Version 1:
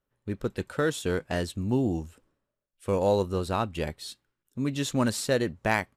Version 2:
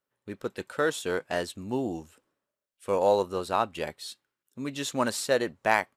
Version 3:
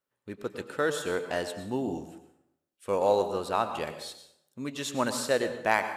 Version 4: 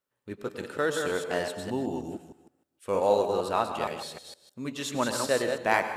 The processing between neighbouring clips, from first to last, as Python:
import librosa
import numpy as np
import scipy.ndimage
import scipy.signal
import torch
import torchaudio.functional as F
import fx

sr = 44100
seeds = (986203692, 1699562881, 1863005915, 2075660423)

y1 = fx.highpass(x, sr, hz=430.0, slope=6)
y1 = fx.dynamic_eq(y1, sr, hz=800.0, q=0.73, threshold_db=-35.0, ratio=4.0, max_db=5)
y2 = fx.rev_plate(y1, sr, seeds[0], rt60_s=0.77, hf_ratio=0.7, predelay_ms=90, drr_db=9.0)
y2 = y2 * 10.0 ** (-1.5 / 20.0)
y3 = fx.reverse_delay(y2, sr, ms=155, wet_db=-5.0)